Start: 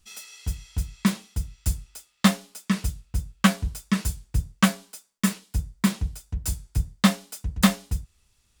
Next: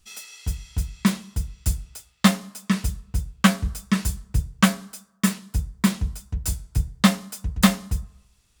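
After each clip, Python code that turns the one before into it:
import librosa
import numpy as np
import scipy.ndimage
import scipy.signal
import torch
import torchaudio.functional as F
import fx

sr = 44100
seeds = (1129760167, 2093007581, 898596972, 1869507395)

y = fx.rev_fdn(x, sr, rt60_s=0.98, lf_ratio=0.85, hf_ratio=0.3, size_ms=45.0, drr_db=17.5)
y = F.gain(torch.from_numpy(y), 2.0).numpy()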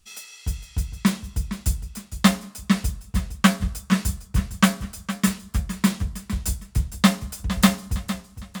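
y = fx.echo_warbled(x, sr, ms=459, feedback_pct=42, rate_hz=2.8, cents=66, wet_db=-12)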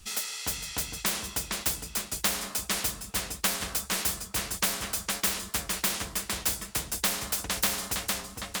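y = fx.spectral_comp(x, sr, ratio=4.0)
y = F.gain(torch.from_numpy(y), -8.5).numpy()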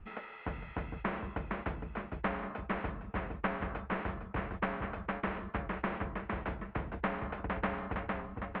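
y = scipy.signal.sosfilt(scipy.signal.bessel(8, 1300.0, 'lowpass', norm='mag', fs=sr, output='sos'), x)
y = F.gain(torch.from_numpy(y), 2.0).numpy()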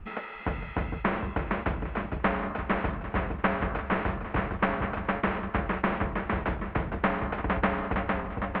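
y = fx.echo_feedback(x, sr, ms=345, feedback_pct=44, wet_db=-13)
y = F.gain(torch.from_numpy(y), 8.0).numpy()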